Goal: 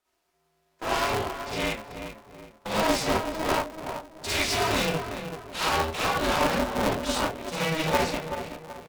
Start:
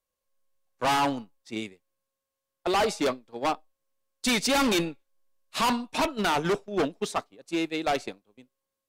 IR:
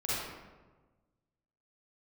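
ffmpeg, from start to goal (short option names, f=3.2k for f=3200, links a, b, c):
-filter_complex "[0:a]equalizer=f=800:t=o:w=0.77:g=4.5,bandreject=f=1k:w=10,asplit=2[a][b];[b]highpass=f=720:p=1,volume=22dB,asoftclip=type=tanh:threshold=-13dB[c];[a][c]amix=inputs=2:normalize=0,lowpass=f=4k:p=1,volume=-6dB,asoftclip=type=tanh:threshold=-22dB,asplit=2[d][e];[e]adelay=379,lowpass=f=1.7k:p=1,volume=-8dB,asplit=2[f][g];[g]adelay=379,lowpass=f=1.7k:p=1,volume=0.41,asplit=2[h][i];[i]adelay=379,lowpass=f=1.7k:p=1,volume=0.41,asplit=2[j][k];[k]adelay=379,lowpass=f=1.7k:p=1,volume=0.41,asplit=2[l][m];[m]adelay=379,lowpass=f=1.7k:p=1,volume=0.41[n];[d][f][h][j][l][n]amix=inputs=6:normalize=0[o];[1:a]atrim=start_sample=2205,atrim=end_sample=4410[p];[o][p]afir=irnorm=-1:irlink=0,aeval=exprs='val(0)*sgn(sin(2*PI*160*n/s))':c=same,volume=-5dB"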